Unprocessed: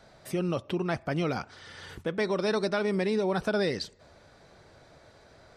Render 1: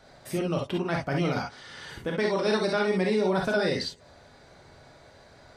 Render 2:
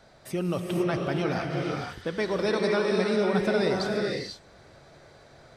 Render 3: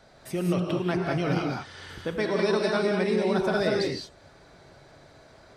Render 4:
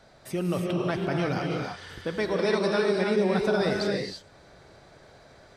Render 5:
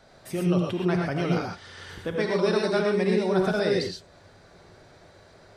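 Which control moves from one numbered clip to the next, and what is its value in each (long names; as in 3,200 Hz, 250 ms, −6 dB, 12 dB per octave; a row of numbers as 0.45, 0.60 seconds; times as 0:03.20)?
reverb whose tail is shaped and stops, gate: 80, 530, 230, 360, 150 milliseconds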